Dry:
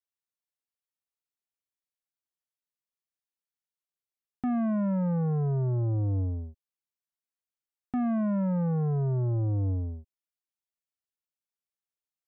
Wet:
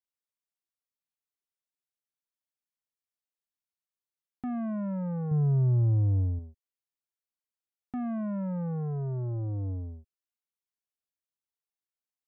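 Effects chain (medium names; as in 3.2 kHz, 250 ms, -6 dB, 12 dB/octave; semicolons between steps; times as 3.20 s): 5.31–6.39 s: peaking EQ 120 Hz +9 dB 1.4 oct; trim -5 dB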